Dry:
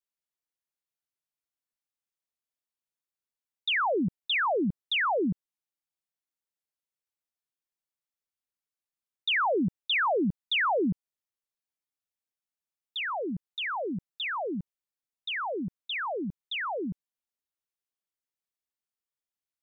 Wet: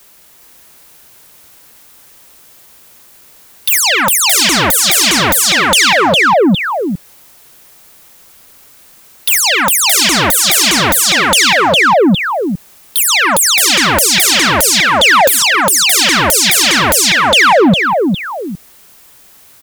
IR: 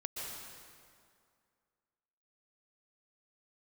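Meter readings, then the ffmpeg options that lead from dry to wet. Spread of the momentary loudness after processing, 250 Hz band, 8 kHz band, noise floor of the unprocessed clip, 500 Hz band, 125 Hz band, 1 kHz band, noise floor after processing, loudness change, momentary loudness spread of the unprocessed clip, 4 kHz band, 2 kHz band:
9 LU, +17.5 dB, n/a, under -85 dBFS, +18.5 dB, +18.5 dB, +20.0 dB, -43 dBFS, +21.0 dB, 10 LU, +24.0 dB, +21.5 dB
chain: -filter_complex "[0:a]highshelf=f=3k:g=-11.5,asplit=2[a][b];[b]aecho=0:1:407|814|1221|1628:0.631|0.177|0.0495|0.0139[c];[a][c]amix=inputs=2:normalize=0,acrossover=split=220|1800[d][e][f];[d]acompressor=threshold=-44dB:ratio=4[g];[e]acompressor=threshold=-41dB:ratio=4[h];[f]acompressor=threshold=-43dB:ratio=4[i];[g][h][i]amix=inputs=3:normalize=0,asplit=2[j][k];[k]asoftclip=type=hard:threshold=-37dB,volume=-12dB[l];[j][l]amix=inputs=2:normalize=0,apsyclip=32.5dB,crystalizer=i=2:c=0,aeval=exprs='2.24*sin(PI/2*2.82*val(0)/2.24)':c=same,acontrast=62,volume=-5dB"

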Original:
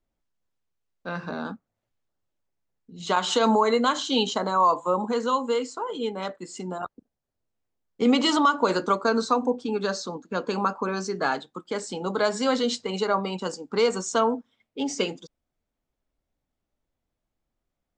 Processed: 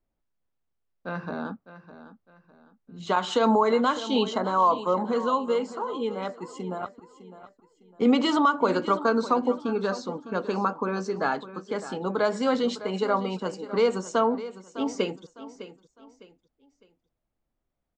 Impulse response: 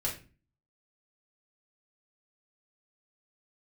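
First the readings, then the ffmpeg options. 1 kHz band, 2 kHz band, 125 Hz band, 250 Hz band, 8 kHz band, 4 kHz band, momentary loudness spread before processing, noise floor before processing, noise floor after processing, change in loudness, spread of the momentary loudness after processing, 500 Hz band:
-1.0 dB, -2.0 dB, 0.0 dB, 0.0 dB, -9.0 dB, -5.5 dB, 14 LU, -84 dBFS, -80 dBFS, -1.0 dB, 14 LU, 0.0 dB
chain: -af "highshelf=f=3.5k:g=-11.5,aecho=1:1:606|1212|1818:0.188|0.0622|0.0205"

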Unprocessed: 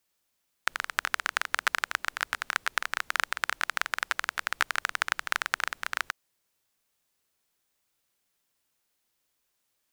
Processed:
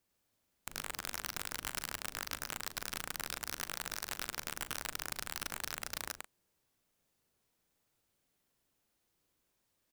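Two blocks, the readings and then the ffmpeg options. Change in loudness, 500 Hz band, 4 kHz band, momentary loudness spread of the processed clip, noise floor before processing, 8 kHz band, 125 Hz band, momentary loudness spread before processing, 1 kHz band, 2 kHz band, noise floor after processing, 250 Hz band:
-9.5 dB, -5.0 dB, -7.0 dB, 2 LU, -77 dBFS, -1.5 dB, n/a, 4 LU, -13.0 dB, -15.0 dB, -80 dBFS, +2.5 dB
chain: -filter_complex "[0:a]tiltshelf=f=650:g=5.5,acontrast=68,aecho=1:1:104:0.668,aeval=exprs='(mod(7.94*val(0)+1,2)-1)/7.94':c=same,asplit=2[a][b];[b]adelay=39,volume=-11dB[c];[a][c]amix=inputs=2:normalize=0,volume=-7dB"

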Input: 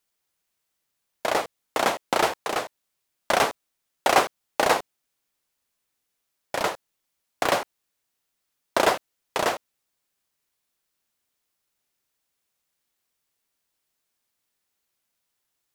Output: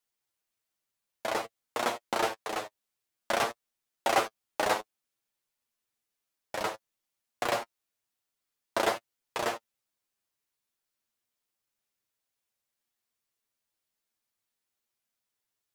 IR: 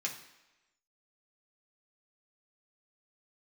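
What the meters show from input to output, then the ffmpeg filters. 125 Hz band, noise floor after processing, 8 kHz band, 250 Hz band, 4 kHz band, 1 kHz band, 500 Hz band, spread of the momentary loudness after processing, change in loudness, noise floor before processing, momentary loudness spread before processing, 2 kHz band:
-7.0 dB, under -85 dBFS, -7.0 dB, -6.5 dB, -7.0 dB, -7.0 dB, -7.0 dB, 11 LU, -7.0 dB, -79 dBFS, 10 LU, -7.0 dB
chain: -af "flanger=delay=8.3:depth=1.3:regen=25:speed=0.54:shape=triangular,volume=-3.5dB"

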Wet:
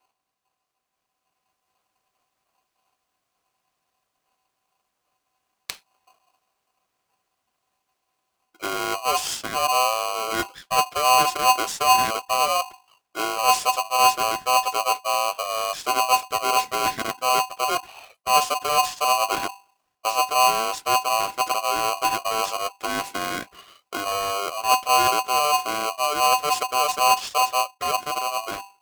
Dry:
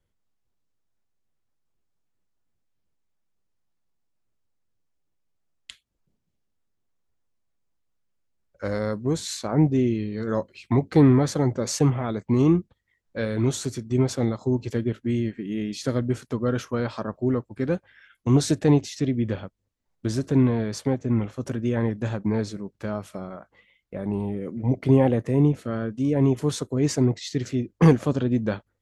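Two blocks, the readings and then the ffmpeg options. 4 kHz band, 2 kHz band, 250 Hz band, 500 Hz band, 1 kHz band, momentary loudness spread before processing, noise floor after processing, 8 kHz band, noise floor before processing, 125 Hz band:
+13.5 dB, +12.0 dB, -17.5 dB, -2.0 dB, +18.0 dB, 11 LU, -79 dBFS, +10.5 dB, -76 dBFS, -25.0 dB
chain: -af "highpass=80,bandreject=f=50:t=h:w=6,bandreject=f=100:t=h:w=6,bandreject=f=150:t=h:w=6,areverse,acompressor=threshold=-36dB:ratio=5,areverse,bandreject=f=890:w=14,dynaudnorm=f=220:g=11:m=6dB,equalizer=f=130:w=5.4:g=13,aeval=exprs='val(0)*sgn(sin(2*PI*890*n/s))':c=same,volume=5.5dB"

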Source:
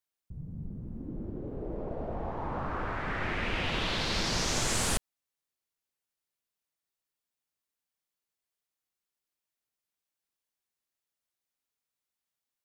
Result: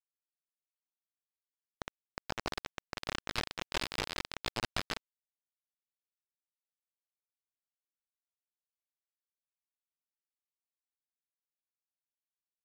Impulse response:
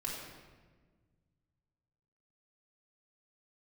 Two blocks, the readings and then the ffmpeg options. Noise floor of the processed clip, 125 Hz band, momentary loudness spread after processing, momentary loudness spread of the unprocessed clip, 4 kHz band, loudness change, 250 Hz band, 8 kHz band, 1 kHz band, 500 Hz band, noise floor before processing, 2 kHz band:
under -85 dBFS, -12.5 dB, 12 LU, 14 LU, -5.5 dB, -6.5 dB, -10.5 dB, -13.5 dB, -7.0 dB, -8.5 dB, under -85 dBFS, -6.0 dB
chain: -af "aeval=exprs='if(lt(val(0),0),0.251*val(0),val(0))':c=same,adynamicequalizer=threshold=0.00355:dfrequency=4200:dqfactor=0.93:tfrequency=4200:tqfactor=0.93:attack=5:release=100:ratio=0.375:range=3:mode=cutabove:tftype=bell,alimiter=limit=-23.5dB:level=0:latency=1:release=330,flanger=delay=17:depth=3.1:speed=0.85,aresample=11025,acrusher=bits=4:mix=0:aa=0.000001,aresample=44100,asoftclip=type=hard:threshold=-27.5dB,volume=6.5dB"

